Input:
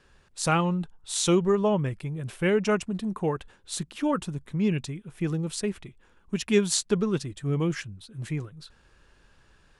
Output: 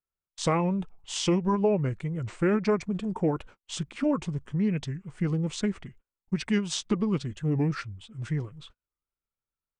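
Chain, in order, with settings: compression 6:1, threshold -24 dBFS, peak gain reduction 9 dB; peaking EQ 8.8 kHz -6.5 dB 1.5 oct; formant shift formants -3 st; gate -50 dBFS, range -39 dB; dynamic bell 450 Hz, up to +5 dB, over -43 dBFS, Q 1.2; warped record 45 rpm, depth 160 cents; trim +1.5 dB

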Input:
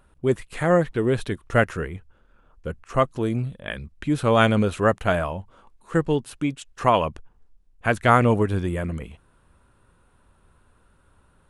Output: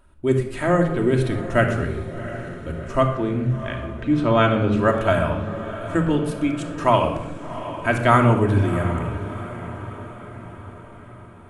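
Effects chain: 3.07–4.79 s: distance through air 130 m; on a send: echo that smears into a reverb 726 ms, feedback 55%, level -12.5 dB; on the sum: simulated room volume 3200 m³, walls furnished, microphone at 2.8 m; trim -1 dB

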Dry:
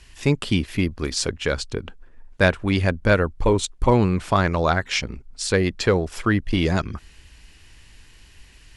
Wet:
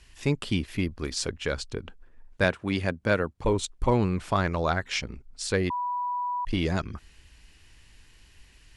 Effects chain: 2.44–3.45 s: high-pass 110 Hz 12 dB/octave; 5.70–6.45 s: bleep 982 Hz -20.5 dBFS; trim -6 dB

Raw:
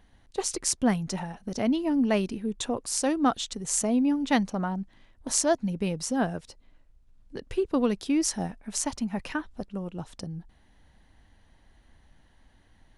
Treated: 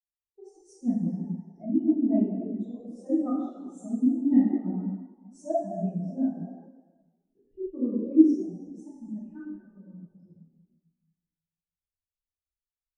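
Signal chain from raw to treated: frequency-shifting echo 187 ms, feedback 44%, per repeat +74 Hz, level -11 dB; plate-style reverb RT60 3.3 s, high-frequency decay 0.75×, DRR -9 dB; spectral contrast expander 2.5:1; trim -2.5 dB

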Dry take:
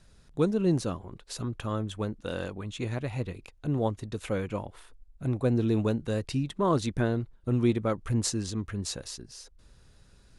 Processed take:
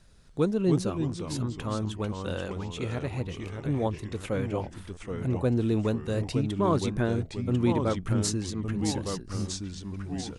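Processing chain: ever faster or slower copies 249 ms, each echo -2 st, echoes 3, each echo -6 dB

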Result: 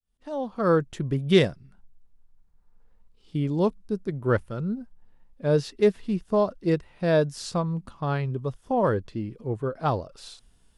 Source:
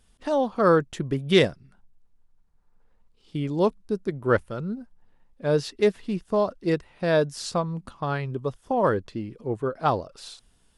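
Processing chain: fade-in on the opening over 0.94 s; bass shelf 200 Hz +4.5 dB; harmonic-percussive split percussive -4 dB

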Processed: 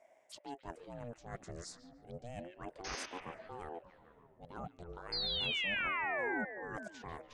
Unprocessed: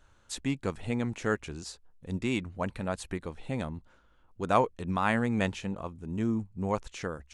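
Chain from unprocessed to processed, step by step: reverse; compression 12:1, threshold -38 dBFS, peak gain reduction 20.5 dB; reverse; painted sound noise, 2.84–3.06 s, 820–6000 Hz -34 dBFS; touch-sensitive phaser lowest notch 520 Hz, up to 3.7 kHz, full sweep at -38 dBFS; painted sound fall, 5.12–6.45 s, 820–4700 Hz -33 dBFS; on a send: repeats whose band climbs or falls 144 ms, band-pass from 2.6 kHz, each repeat -0.7 oct, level -4.5 dB; on the sum: ring modulator with a swept carrier 450 Hz, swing 45%, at 0.3 Hz; trim -1 dB

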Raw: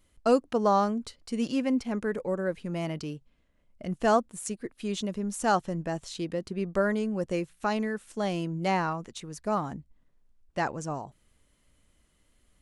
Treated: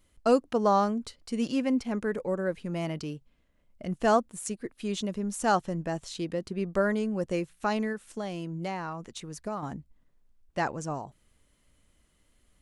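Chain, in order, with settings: 7.92–9.63 s: compression 4:1, threshold -32 dBFS, peak gain reduction 9 dB

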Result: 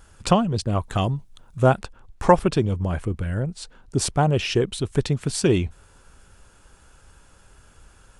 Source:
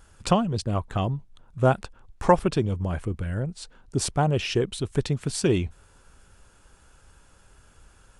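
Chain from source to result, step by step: 0.80–1.63 s: treble shelf 4 kHz +10 dB; trim +3 dB

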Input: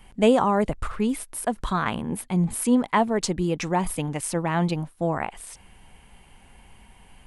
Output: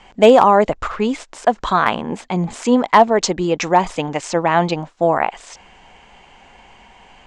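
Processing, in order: FFT filter 110 Hz 0 dB, 680 Hz +15 dB, 1.4 kHz +12 dB, 7.3 kHz +11 dB, 11 kHz -28 dB; overload inside the chain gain -1 dB; trim -2.5 dB

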